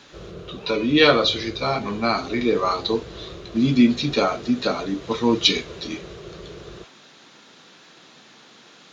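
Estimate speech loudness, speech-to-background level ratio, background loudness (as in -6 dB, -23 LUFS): -21.0 LUFS, 19.0 dB, -40.0 LUFS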